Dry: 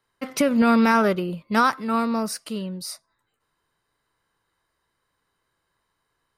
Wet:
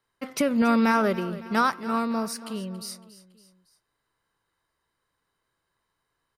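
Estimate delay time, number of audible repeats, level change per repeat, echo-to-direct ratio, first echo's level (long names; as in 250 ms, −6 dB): 279 ms, 3, −5.5 dB, −15.0 dB, −16.5 dB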